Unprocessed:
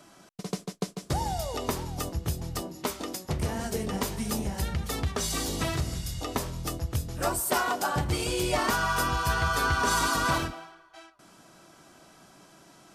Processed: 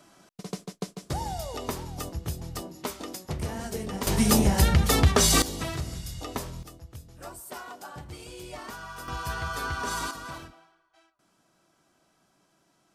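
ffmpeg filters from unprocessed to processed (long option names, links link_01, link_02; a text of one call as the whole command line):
ffmpeg -i in.wav -af "asetnsamples=nb_out_samples=441:pad=0,asendcmd='4.07 volume volume 10dB;5.42 volume volume -3dB;6.63 volume volume -14dB;9.08 volume volume -6dB;10.11 volume volume -13.5dB',volume=-2.5dB" out.wav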